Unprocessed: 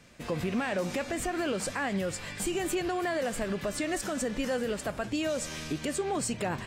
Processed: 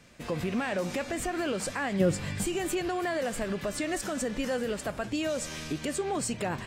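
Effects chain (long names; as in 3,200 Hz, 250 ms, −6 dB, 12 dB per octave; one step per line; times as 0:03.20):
0:01.99–0:02.43: parametric band 290 Hz → 77 Hz +13 dB 2.5 octaves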